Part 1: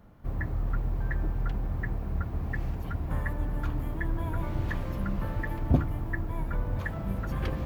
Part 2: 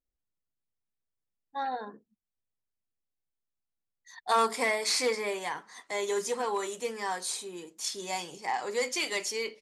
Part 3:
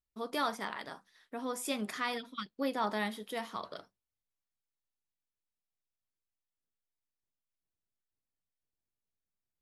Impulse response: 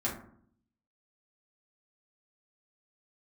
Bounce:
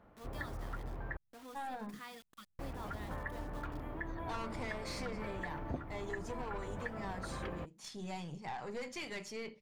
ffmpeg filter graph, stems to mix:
-filter_complex "[0:a]bass=f=250:g=-11,treble=f=4000:g=-14,volume=0.841,asplit=3[s0][s1][s2];[s0]atrim=end=1.17,asetpts=PTS-STARTPTS,afade=t=out:st=1.166:d=0.004:c=hsin[s3];[s1]atrim=start=1.17:end=2.59,asetpts=PTS-STARTPTS,volume=0[s4];[s2]atrim=start=2.59,asetpts=PTS-STARTPTS,afade=t=in:d=0.004:c=hsin[s5];[s3][s4][s5]concat=n=3:v=0:a=1[s6];[1:a]lowpass=f=1500:p=1,lowshelf=f=230:t=q:w=1.5:g=13.5,aeval=exprs='(tanh(39.8*val(0)+0.45)-tanh(0.45))/39.8':c=same,volume=0.75,asplit=2[s7][s8];[2:a]acrusher=bits=6:mix=0:aa=0.000001,volume=0.178[s9];[s8]apad=whole_len=423855[s10];[s9][s10]sidechaincompress=threshold=0.00631:ratio=8:attack=8.6:release=172[s11];[s6][s7][s11]amix=inputs=3:normalize=0,acompressor=threshold=0.0126:ratio=3"

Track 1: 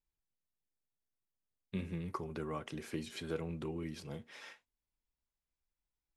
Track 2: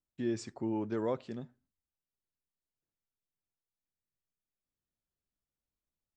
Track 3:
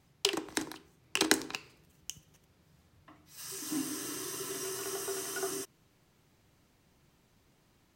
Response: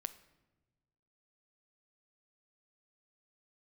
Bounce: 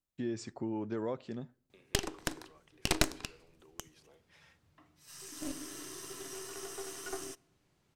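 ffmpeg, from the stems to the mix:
-filter_complex "[0:a]highpass=f=340:w=0.5412,highpass=f=340:w=1.3066,agate=range=0.0224:threshold=0.00224:ratio=3:detection=peak,acompressor=threshold=0.00224:ratio=6,volume=0.335,asplit=2[s0][s1];[s1]volume=0.473[s2];[1:a]acompressor=threshold=0.0158:ratio=2,volume=1.06,asplit=2[s3][s4];[s4]volume=0.1[s5];[2:a]aeval=exprs='0.708*(cos(1*acos(clip(val(0)/0.708,-1,1)))-cos(1*PI/2))+0.251*(cos(8*acos(clip(val(0)/0.708,-1,1)))-cos(8*PI/2))':c=same,lowpass=12000,adelay=1700,volume=0.376,asplit=2[s6][s7];[s7]volume=0.447[s8];[3:a]atrim=start_sample=2205[s9];[s2][s5][s8]amix=inputs=3:normalize=0[s10];[s10][s9]afir=irnorm=-1:irlink=0[s11];[s0][s3][s6][s11]amix=inputs=4:normalize=0"

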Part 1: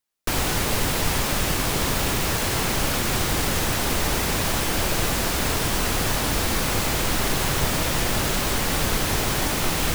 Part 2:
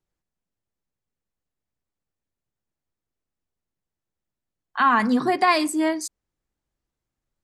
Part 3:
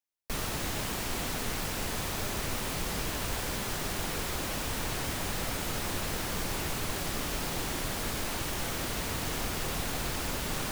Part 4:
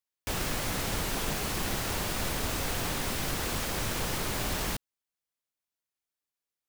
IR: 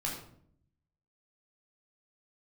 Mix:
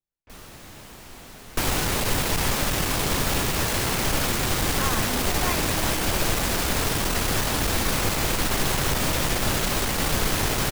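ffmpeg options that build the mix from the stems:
-filter_complex "[0:a]aeval=exprs='(tanh(7.08*val(0)+0.4)-tanh(0.4))/7.08':c=same,adelay=1300,volume=1.19[s0];[1:a]volume=0.211[s1];[2:a]volume=0.299[s2];[3:a]lowpass=2300,alimiter=level_in=1.41:limit=0.0631:level=0:latency=1,volume=0.708,volume=0.133[s3];[s0][s1][s2][s3]amix=inputs=4:normalize=0"

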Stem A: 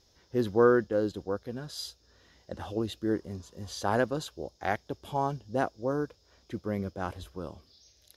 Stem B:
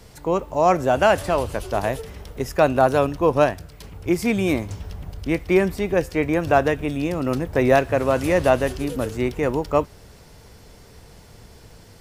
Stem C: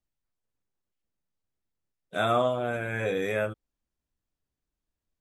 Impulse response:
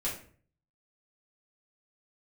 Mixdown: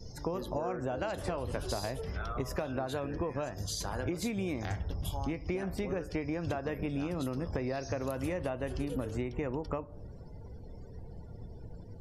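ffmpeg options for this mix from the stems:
-filter_complex "[0:a]highshelf=f=2900:g=11,volume=0.891,asplit=2[s0][s1];[s1]volume=0.106[s2];[1:a]acompressor=threshold=0.0794:ratio=6,lowshelf=f=210:g=5,volume=0.668,asplit=2[s3][s4];[s4]volume=0.112[s5];[2:a]bandpass=f=1300:t=q:w=1.7:csg=0,volume=0.282,asplit=3[s6][s7][s8];[s7]volume=0.188[s9];[s8]apad=whole_len=360215[s10];[s0][s10]sidechaincompress=threshold=0.002:ratio=10:attack=33:release=179[s11];[s11][s6]amix=inputs=2:normalize=0,highshelf=f=3500:g=9,acompressor=threshold=0.0141:ratio=5,volume=1[s12];[3:a]atrim=start_sample=2205[s13];[s2][s5][s9]amix=inputs=3:normalize=0[s14];[s14][s13]afir=irnorm=-1:irlink=0[s15];[s3][s12][s15]amix=inputs=3:normalize=0,afftdn=nr=26:nf=-51,acompressor=threshold=0.0282:ratio=6"

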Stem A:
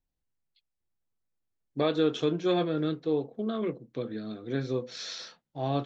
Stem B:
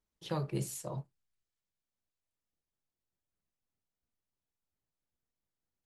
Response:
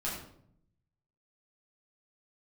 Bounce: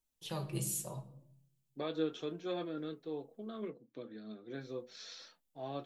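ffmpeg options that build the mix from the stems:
-filter_complex "[0:a]highpass=160,volume=0.447[s0];[1:a]aexciter=amount=1.8:drive=6.8:freq=2600,volume=0.794,asplit=3[s1][s2][s3];[s1]atrim=end=3.68,asetpts=PTS-STARTPTS,afade=t=out:st=3.676:d=0.004:c=hsin[s4];[s2]atrim=start=3.68:end=4.53,asetpts=PTS-STARTPTS,volume=0[s5];[s3]atrim=start=4.53,asetpts=PTS-STARTPTS,afade=t=in:d=0.004:c=hsin[s6];[s4][s5][s6]concat=n=3:v=0:a=1,asplit=2[s7][s8];[s8]volume=0.299[s9];[2:a]atrim=start_sample=2205[s10];[s9][s10]afir=irnorm=-1:irlink=0[s11];[s0][s7][s11]amix=inputs=3:normalize=0,flanger=delay=3.1:depth=3.3:regen=60:speed=0.75:shape=triangular"

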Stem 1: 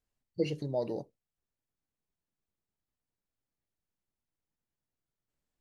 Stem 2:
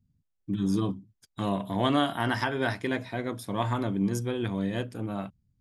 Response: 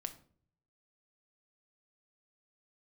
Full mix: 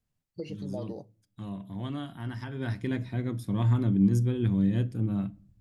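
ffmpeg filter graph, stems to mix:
-filter_complex "[0:a]acompressor=threshold=0.0112:ratio=2.5,volume=1,asplit=2[s0][s1];[s1]volume=0.133[s2];[1:a]asubboost=boost=7.5:cutoff=250,volume=0.335,afade=t=in:st=2.4:d=0.51:silence=0.375837,asplit=2[s3][s4];[s4]volume=0.501[s5];[2:a]atrim=start_sample=2205[s6];[s2][s5]amix=inputs=2:normalize=0[s7];[s7][s6]afir=irnorm=-1:irlink=0[s8];[s0][s3][s8]amix=inputs=3:normalize=0"

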